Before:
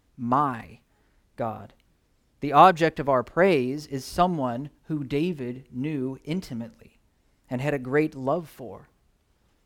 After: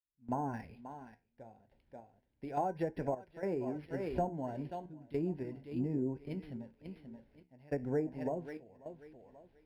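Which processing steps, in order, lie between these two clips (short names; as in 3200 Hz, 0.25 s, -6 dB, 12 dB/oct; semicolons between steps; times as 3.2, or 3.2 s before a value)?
opening faded in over 0.56 s; Butterworth band-stop 1200 Hz, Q 2.5; high shelf 6400 Hz -8.5 dB; on a send: tape echo 0.535 s, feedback 22%, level -12 dB, low-pass 5400 Hz; on the sum: compressor 6:1, threshold -24 dBFS, peak gain reduction 13 dB; random-step tremolo, depth 95%; treble ducked by the level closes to 990 Hz, closed at -26 dBFS; flange 0.33 Hz, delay 7.2 ms, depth 7.6 ms, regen -70%; decimation joined by straight lines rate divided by 6×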